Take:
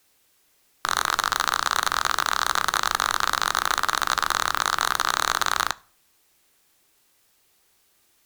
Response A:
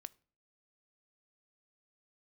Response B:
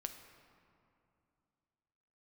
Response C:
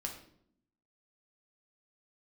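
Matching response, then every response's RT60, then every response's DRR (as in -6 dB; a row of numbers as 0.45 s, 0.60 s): A; 0.45 s, 2.6 s, 0.65 s; 15.0 dB, 6.0 dB, 1.0 dB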